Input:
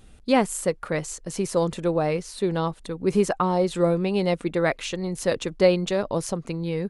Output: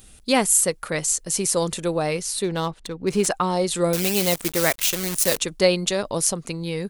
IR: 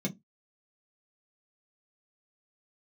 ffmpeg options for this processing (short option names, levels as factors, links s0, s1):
-filter_complex "[0:a]asettb=1/sr,asplit=3[s0][s1][s2];[s0]atrim=end=3.934[s3];[s1]atrim=start=3.93:end=5.38,asetpts=PTS-STARTPTS,afade=t=in:d=0.004:c=qsin,afade=t=out:st=1.446:d=0.004:c=qsin,acrusher=bits=6:dc=4:mix=0:aa=0.000001[s4];[s2]atrim=start=5.376[s5];[s3][s4]acrossfade=d=0.004:c1=hsin:c2=qsin[s6];[s6][s5]acrossfade=d=0.004:c1=qsin:c2=hsin,crystalizer=i=4.5:c=0,asettb=1/sr,asplit=3[s7][s8][s9];[s7]atrim=end=2.444[s10];[s8]atrim=start=2.44:end=3.27,asetpts=PTS-STARTPTS,afade=t=in:d=0.004:c=qsin,afade=t=out:st=0.826:d=0.004:c=qsin,adynamicsmooth=sensitivity=4.5:basefreq=3000[s11];[s9]atrim=start=3.266[s12];[s10][s11]acrossfade=d=0.004:c1=hsin:c2=qsin[s13];[s13][s12]acrossfade=d=0.004:c1=qsin:c2=hsin,volume=0.891"